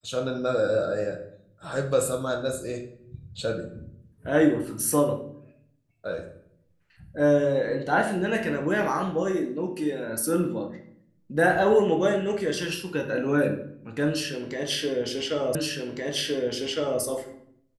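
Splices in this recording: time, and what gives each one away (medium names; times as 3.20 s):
15.55 s: repeat of the last 1.46 s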